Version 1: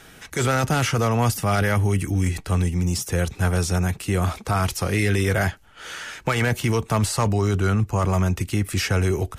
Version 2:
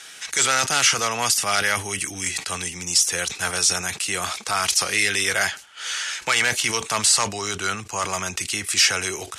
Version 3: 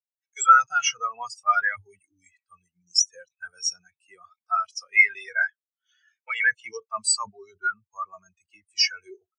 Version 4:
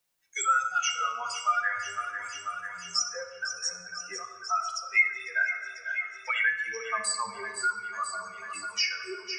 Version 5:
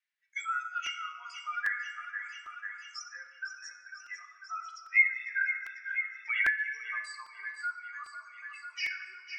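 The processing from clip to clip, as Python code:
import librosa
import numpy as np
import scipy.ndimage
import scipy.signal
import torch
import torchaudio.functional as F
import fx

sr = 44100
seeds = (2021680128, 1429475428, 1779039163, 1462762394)

y1 = fx.weighting(x, sr, curve='ITU-R 468')
y1 = fx.sustainer(y1, sr, db_per_s=150.0)
y2 = fx.spectral_expand(y1, sr, expansion=4.0)
y3 = fx.echo_feedback(y2, sr, ms=495, feedback_pct=54, wet_db=-15.5)
y3 = fx.room_shoebox(y3, sr, seeds[0], volume_m3=620.0, walls='mixed', distance_m=0.89)
y3 = fx.band_squash(y3, sr, depth_pct=70)
y3 = F.gain(torch.from_numpy(y3), -4.0).numpy()
y4 = fx.ladder_bandpass(y3, sr, hz=2100.0, resonance_pct=60)
y4 = fx.buffer_crackle(y4, sr, first_s=0.86, period_s=0.8, block=128, kind='repeat')
y4 = F.gain(torch.from_numpy(y4), 4.0).numpy()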